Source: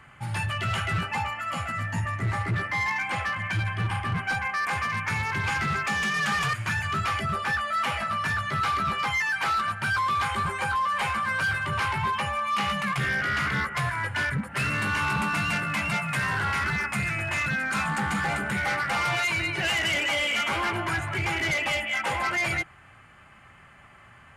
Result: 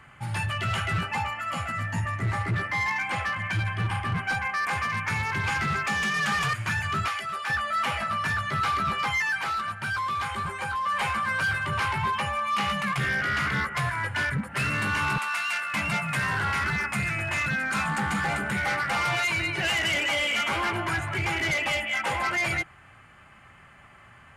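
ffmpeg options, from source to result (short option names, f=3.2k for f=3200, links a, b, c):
-filter_complex "[0:a]asettb=1/sr,asplit=3[a][b][c];[a]atrim=end=7.084[d];[b]atrim=start=7.08:end=7.5,asetpts=PTS-STARTPTS,afade=t=in:d=0.004:c=qsin,afade=t=out:st=0.416:d=0.004:c=qsin,highpass=f=1.2k:p=1[e];[c]atrim=start=7.496[f];[d][e]acrossfade=d=0.004:c1=hsin:c2=qsin[g];[g][f]acrossfade=d=0.004:c1=qsin:c2=hsin,asettb=1/sr,asplit=3[h][i][j];[h]atrim=end=15.184[k];[i]atrim=start=15.18:end=15.74,asetpts=PTS-STARTPTS,afade=t=in:d=0.004:c=qsin,afade=t=out:st=0.556:d=0.004:c=qsin,highpass=1k[l];[j]atrim=start=15.736[m];[k][l]acrossfade=d=0.004:c1=hsin:c2=qsin[n];[n][m]acrossfade=d=0.004:c1=qsin:c2=hsin,asplit=3[o][p][q];[o]atrim=end=9.412[r];[p]atrim=start=9.408:end=10.862,asetpts=PTS-STARTPTS,volume=-3.5dB[s];[q]atrim=start=10.858[t];[r][s]acrossfade=d=0.004:c1=hsin:c2=hsin[u];[u][t]acrossfade=d=0.004:c1=hsin:c2=hsin"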